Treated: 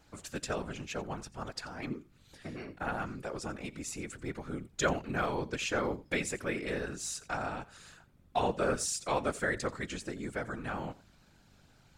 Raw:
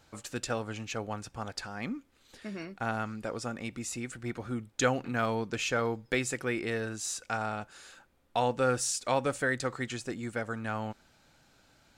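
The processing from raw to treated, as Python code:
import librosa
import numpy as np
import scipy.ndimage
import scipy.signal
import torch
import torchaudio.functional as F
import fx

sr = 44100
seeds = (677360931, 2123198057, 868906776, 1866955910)

p1 = fx.add_hum(x, sr, base_hz=50, snr_db=26)
p2 = p1 + fx.echo_single(p1, sr, ms=87, db=-19.5, dry=0)
p3 = fx.whisperise(p2, sr, seeds[0])
p4 = fx.peak_eq(p3, sr, hz=5800.0, db=-6.0, octaves=0.77, at=(2.56, 2.98))
y = p4 * 10.0 ** (-2.5 / 20.0)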